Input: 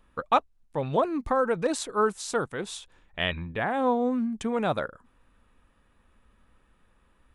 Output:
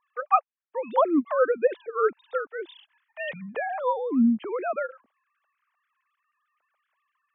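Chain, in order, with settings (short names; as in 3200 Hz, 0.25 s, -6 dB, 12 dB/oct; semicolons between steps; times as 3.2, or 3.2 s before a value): sine-wave speech; gain +1.5 dB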